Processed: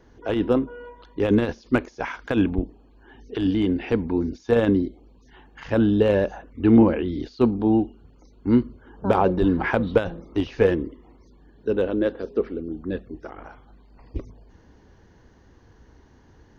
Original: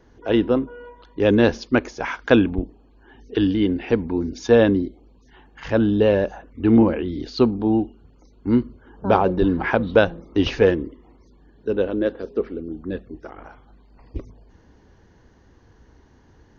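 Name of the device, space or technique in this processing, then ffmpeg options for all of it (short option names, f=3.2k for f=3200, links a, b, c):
de-esser from a sidechain: -filter_complex "[0:a]asplit=2[a][b];[b]highpass=f=5.8k:w=0.5412,highpass=f=5.8k:w=1.3066,apad=whole_len=731245[c];[a][c]sidechaincompress=threshold=-56dB:ratio=8:attack=0.83:release=27"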